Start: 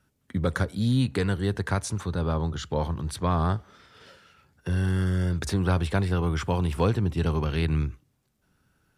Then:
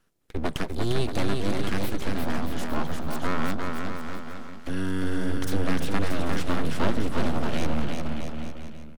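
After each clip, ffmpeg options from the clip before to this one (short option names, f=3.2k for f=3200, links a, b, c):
-af "aeval=exprs='abs(val(0))':c=same,aecho=1:1:350|630|854|1033|1177:0.631|0.398|0.251|0.158|0.1"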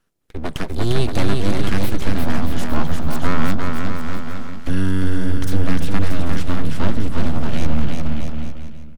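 -af "asubboost=boost=2:cutoff=250,dynaudnorm=f=110:g=11:m=11.5dB,volume=-1dB"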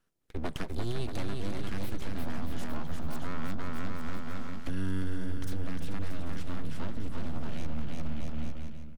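-af "alimiter=limit=-13dB:level=0:latency=1:release=478,volume=-7dB"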